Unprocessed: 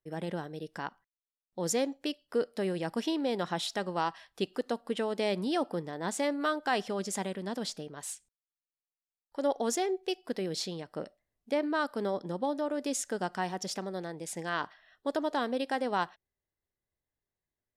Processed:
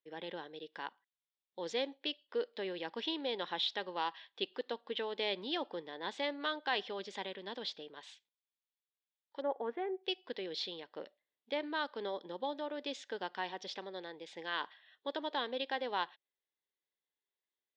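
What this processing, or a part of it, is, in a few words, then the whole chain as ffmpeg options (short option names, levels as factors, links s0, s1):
phone earpiece: -filter_complex "[0:a]highpass=470,equalizer=f=670:t=q:w=4:g=-9,equalizer=f=1300:t=q:w=4:g=-8,equalizer=f=3500:t=q:w=4:g=8,lowpass=f=4100:w=0.5412,lowpass=f=4100:w=1.3066,asplit=3[s0][s1][s2];[s0]afade=t=out:st=9.4:d=0.02[s3];[s1]lowpass=f=1800:w=0.5412,lowpass=f=1800:w=1.3066,afade=t=in:st=9.4:d=0.02,afade=t=out:st=10.03:d=0.02[s4];[s2]afade=t=in:st=10.03:d=0.02[s5];[s3][s4][s5]amix=inputs=3:normalize=0,volume=0.841"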